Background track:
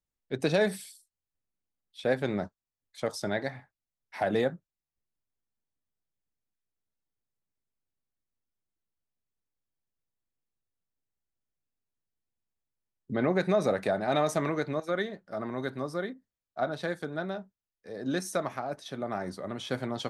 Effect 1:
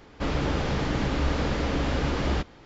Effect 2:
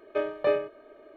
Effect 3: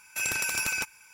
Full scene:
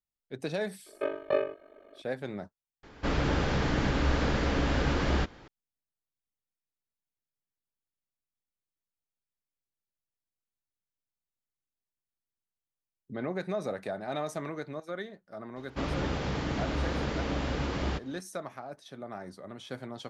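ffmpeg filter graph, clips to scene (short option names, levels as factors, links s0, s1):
-filter_complex "[1:a]asplit=2[s0][s1];[0:a]volume=0.422[s2];[2:a]aeval=exprs='val(0)*sin(2*PI*24*n/s)':c=same[s3];[s0]equalizer=f=1600:w=4.1:g=3.5[s4];[s1]highpass=43[s5];[s2]asplit=2[s6][s7];[s6]atrim=end=2.834[s8];[s4]atrim=end=2.65,asetpts=PTS-STARTPTS,volume=0.841[s9];[s7]atrim=start=5.476[s10];[s3]atrim=end=1.16,asetpts=PTS-STARTPTS,volume=0.944,afade=t=in:d=0.004:c=hsin,afade=t=out:st=1.156:d=0.004:c=hsin,adelay=860[s11];[s5]atrim=end=2.65,asetpts=PTS-STARTPTS,volume=0.562,afade=t=in:d=0.004:c=hsin,afade=t=out:st=2.646:d=0.004:c=hsin,adelay=686196S[s12];[s8][s9]acrossfade=d=0.004:c1=hsin:c2=hsin[s13];[s13][s10]acrossfade=d=0.004:c1=hsin:c2=hsin[s14];[s14][s11][s12]amix=inputs=3:normalize=0"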